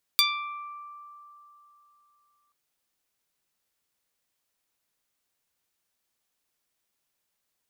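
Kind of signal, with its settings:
Karplus-Strong string D6, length 2.33 s, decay 3.36 s, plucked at 0.12, medium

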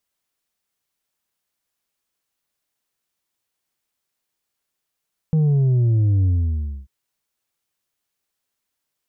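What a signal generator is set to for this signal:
bass drop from 160 Hz, over 1.54 s, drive 4 dB, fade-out 0.62 s, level −14.5 dB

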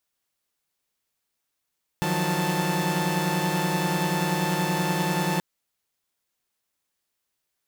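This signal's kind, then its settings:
held notes D#3/F3/F#3/A5 saw, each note −26 dBFS 3.38 s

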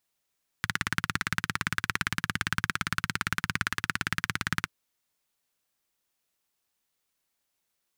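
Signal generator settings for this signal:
pulse-train model of a single-cylinder engine, steady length 4.04 s, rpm 2,100, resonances 110/160/1,500 Hz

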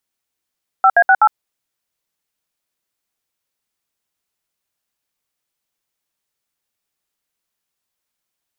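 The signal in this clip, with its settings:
touch tones "5A68", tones 59 ms, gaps 66 ms, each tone −9.5 dBFS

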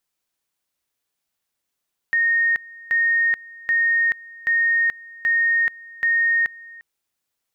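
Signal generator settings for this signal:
tone at two levels in turn 1,850 Hz −15.5 dBFS, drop 22.5 dB, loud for 0.43 s, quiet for 0.35 s, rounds 6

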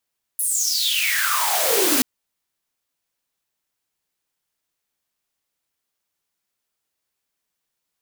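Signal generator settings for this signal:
filter sweep on noise white, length 1.63 s highpass, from 11,000 Hz, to 240 Hz, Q 10, exponential, gain ramp +11 dB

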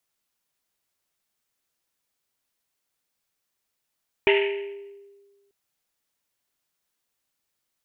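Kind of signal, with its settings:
drum after Risset length 1.24 s, pitch 400 Hz, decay 1.54 s, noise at 2,400 Hz, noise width 1,100 Hz, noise 35%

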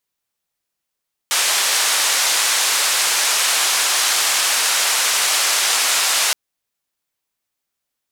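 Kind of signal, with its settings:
band-limited noise 740–8,900 Hz, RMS −17.5 dBFS 5.02 s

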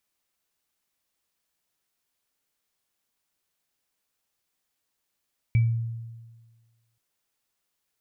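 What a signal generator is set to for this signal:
inharmonic partials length 1.43 s, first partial 115 Hz, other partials 2,300 Hz, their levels −16.5 dB, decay 1.45 s, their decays 0.27 s, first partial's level −15.5 dB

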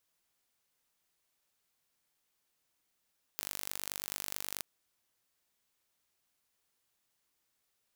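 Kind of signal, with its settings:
impulse train 49.3 per second, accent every 2, −9.5 dBFS 1.23 s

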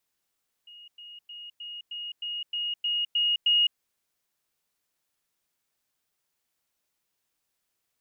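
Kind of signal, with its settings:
level staircase 2,870 Hz −45.5 dBFS, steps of 3 dB, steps 10, 0.21 s 0.10 s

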